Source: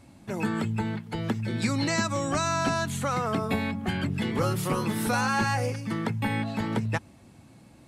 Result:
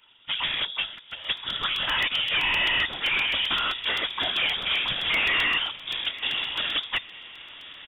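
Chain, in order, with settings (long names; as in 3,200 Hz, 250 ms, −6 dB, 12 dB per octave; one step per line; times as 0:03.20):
0:05.70–0:06.43: running median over 25 samples
high-pass filter 350 Hz 12 dB per octave
comb filter 4.9 ms, depth 60%
0:00.84–0:01.25: downward compressor 4 to 1, threshold −39 dBFS, peak gain reduction 7.5 dB
harmonic generator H 2 −10 dB, 5 −24 dB, 7 −19 dB, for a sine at −22.5 dBFS
random phases in short frames
hard clipping −25.5 dBFS, distortion −10 dB
feedback delay with all-pass diffusion 945 ms, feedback 42%, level −16 dB
voice inversion scrambler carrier 3,600 Hz
regular buffer underruns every 0.13 s, samples 128, repeat, from 0:00.98
level +5 dB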